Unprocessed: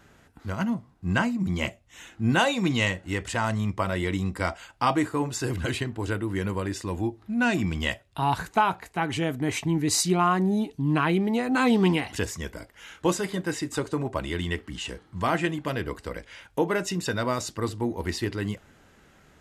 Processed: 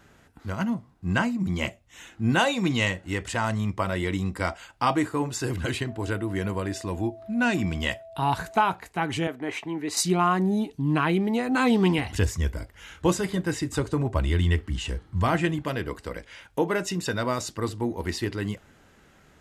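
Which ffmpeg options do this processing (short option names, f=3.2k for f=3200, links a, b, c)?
-filter_complex "[0:a]asettb=1/sr,asplit=3[a][b][c];[a]atrim=end=5.884[d];[b]atrim=start=5.88:end=8.66,asetpts=PTS-STARTPTS,afade=t=in:d=0.004:c=qsin,afade=t=out:st=2.776:d=0.004:c=qsin,aeval=exprs='val(0)+0.00794*sin(2*PI*660*n/s)':c=same[e];[c]atrim=start=8.656[f];[d][e]acrossfade=d=0.004:c1=hsin:c2=qsin[g];[g][f]acrossfade=d=0.004:c1=qsin:c2=hsin,asettb=1/sr,asplit=3[h][i][j];[h]atrim=end=9.274[k];[i]atrim=start=9.27:end=9.97,asetpts=PTS-STARTPTS,afade=t=in:d=0.004:c=qsin,afade=t=out:st=0.696:d=0.004:c=qsin,acrossover=split=300 3300:gain=0.141 1 0.251[l][m][n];[l][m][n]amix=inputs=3:normalize=0[o];[j]atrim=start=9.966[p];[k][o]acrossfade=d=0.004:c1=hsin:c2=qsin[q];[q][p]acrossfade=d=0.004:c1=qsin:c2=hsin,asettb=1/sr,asplit=3[r][s][t];[r]atrim=end=11.984[u];[s]atrim=start=11.98:end=15.63,asetpts=PTS-STARTPTS,afade=t=in:d=0.004:c=qsin,afade=t=out:st=3.646:d=0.004:c=qsin,equalizer=f=66:w=0.8:g=14.5[v];[t]atrim=start=15.626[w];[u][v]acrossfade=d=0.004:c1=hsin:c2=qsin[x];[x][w]acrossfade=d=0.004:c1=qsin:c2=hsin"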